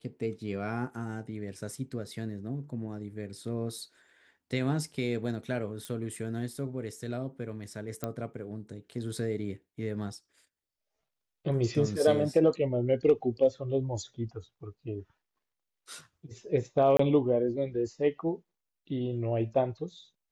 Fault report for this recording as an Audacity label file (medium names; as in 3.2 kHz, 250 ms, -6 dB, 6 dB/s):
5.850000	5.850000	pop -24 dBFS
8.040000	8.040000	pop -18 dBFS
16.970000	16.990000	dropout 24 ms